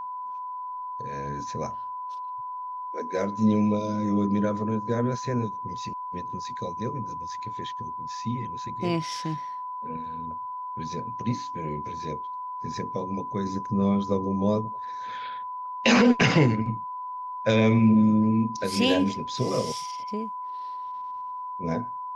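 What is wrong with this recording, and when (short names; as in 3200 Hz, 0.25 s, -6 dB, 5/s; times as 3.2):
tone 1000 Hz -32 dBFS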